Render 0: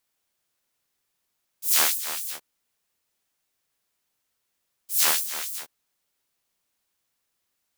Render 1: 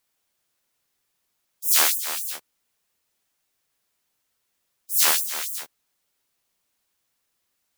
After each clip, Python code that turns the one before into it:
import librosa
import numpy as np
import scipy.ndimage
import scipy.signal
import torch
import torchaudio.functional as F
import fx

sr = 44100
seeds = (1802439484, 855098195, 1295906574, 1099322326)

y = fx.spec_gate(x, sr, threshold_db=-15, keep='strong')
y = F.gain(torch.from_numpy(y), 2.5).numpy()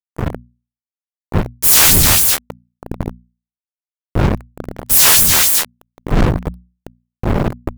y = fx.dmg_wind(x, sr, seeds[0], corner_hz=140.0, level_db=-37.0)
y = fx.fuzz(y, sr, gain_db=41.0, gate_db=-33.0)
y = fx.hum_notches(y, sr, base_hz=60, count=4)
y = F.gain(torch.from_numpy(y), 6.5).numpy()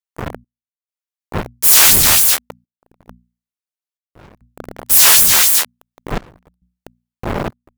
y = fx.low_shelf(x, sr, hz=340.0, db=-10.0)
y = fx.step_gate(y, sr, bpm=68, pattern='xx..xxxxxxxx..xx', floor_db=-24.0, edge_ms=4.5)
y = F.gain(torch.from_numpy(y), 1.0).numpy()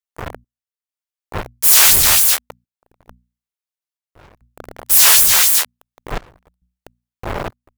y = fx.peak_eq(x, sr, hz=210.0, db=-8.0, octaves=1.5)
y = F.gain(torch.from_numpy(y), -1.0).numpy()